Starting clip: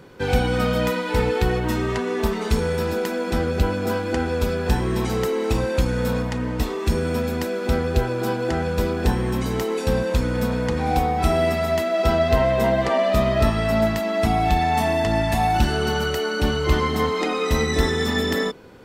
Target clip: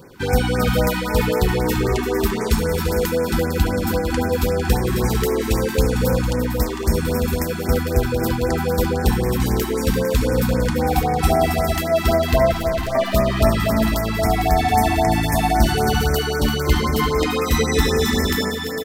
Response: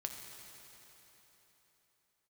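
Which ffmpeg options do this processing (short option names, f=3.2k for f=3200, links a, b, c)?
-filter_complex "[0:a]asettb=1/sr,asplit=3[a][b][c];[a]atrim=end=12.524[d];[b]atrim=start=12.52:end=12.95,asetpts=PTS-STARTPTS,afade=t=in:d=0.004:c=qsin,afade=t=out:st=0.426:d=0.004:c=qsin,aeval=exprs='(tanh(35.5*val(0)+0.7)-tanh(0.7))/35.5':c=same[e];[c]atrim=start=12.946[f];[d][e]acrossfade=d=0.004:c1=hsin:c2=qsin[g];[g][f]acrossfade=d=0.004:c1=qsin:c2=hsin,highshelf=f=9.1k:g=11,asplit=2[h][i];[i]aecho=0:1:342|453|508:0.355|0.355|0.211[j];[h][j]amix=inputs=2:normalize=0,afftfilt=real='re*(1-between(b*sr/1024,480*pow(3600/480,0.5+0.5*sin(2*PI*3.8*pts/sr))/1.41,480*pow(3600/480,0.5+0.5*sin(2*PI*3.8*pts/sr))*1.41))':imag='im*(1-between(b*sr/1024,480*pow(3600/480,0.5+0.5*sin(2*PI*3.8*pts/sr))/1.41,480*pow(3600/480,0.5+0.5*sin(2*PI*3.8*pts/sr))*1.41))':win_size=1024:overlap=0.75,volume=2dB"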